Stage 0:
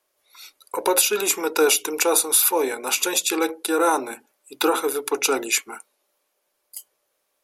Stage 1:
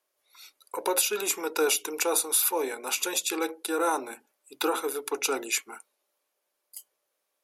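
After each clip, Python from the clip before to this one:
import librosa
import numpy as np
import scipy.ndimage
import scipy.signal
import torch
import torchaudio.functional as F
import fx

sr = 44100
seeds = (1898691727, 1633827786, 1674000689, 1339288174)

y = fx.low_shelf(x, sr, hz=140.0, db=-7.0)
y = y * librosa.db_to_amplitude(-6.5)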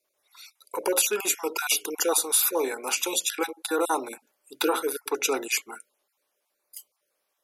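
y = fx.spec_dropout(x, sr, seeds[0], share_pct=21)
y = y * librosa.db_to_amplitude(3.0)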